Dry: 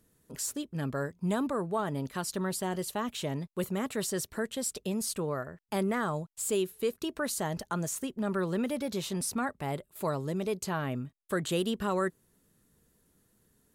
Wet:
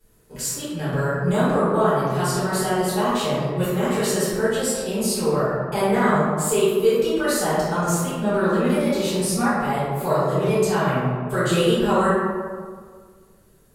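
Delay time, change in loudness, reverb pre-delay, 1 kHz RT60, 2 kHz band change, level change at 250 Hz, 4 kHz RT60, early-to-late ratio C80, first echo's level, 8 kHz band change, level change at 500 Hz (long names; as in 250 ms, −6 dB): no echo audible, +11.5 dB, 3 ms, 1.7 s, +12.0 dB, +10.5 dB, 0.85 s, 0.0 dB, no echo audible, +8.5 dB, +13.0 dB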